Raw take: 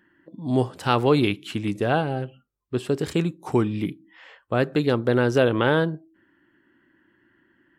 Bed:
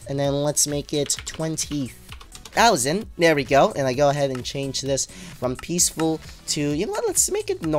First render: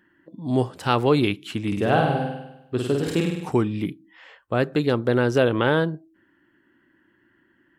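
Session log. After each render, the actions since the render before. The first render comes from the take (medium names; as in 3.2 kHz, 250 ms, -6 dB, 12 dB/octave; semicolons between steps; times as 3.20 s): 1.67–3.49 s: flutter echo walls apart 8.6 m, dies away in 0.89 s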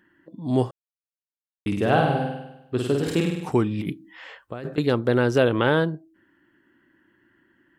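0.71–1.66 s: mute; 3.68–4.78 s: compressor with a negative ratio -30 dBFS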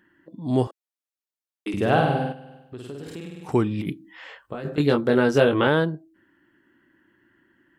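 0.67–1.74 s: steep high-pass 260 Hz; 2.32–3.49 s: compression 2.5:1, threshold -40 dBFS; 4.42–5.67 s: doubling 21 ms -4 dB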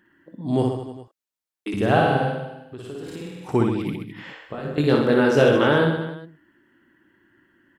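reverse bouncing-ball echo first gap 60 ms, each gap 1.15×, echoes 5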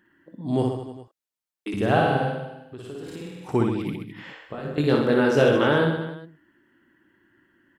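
trim -2 dB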